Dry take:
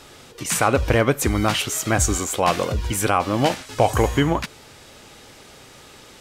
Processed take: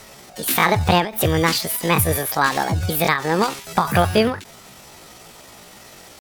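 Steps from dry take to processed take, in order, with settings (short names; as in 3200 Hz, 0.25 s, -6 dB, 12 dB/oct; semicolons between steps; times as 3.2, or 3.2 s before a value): pitch shift +7.5 st; ending taper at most 140 dB/s; gain +2.5 dB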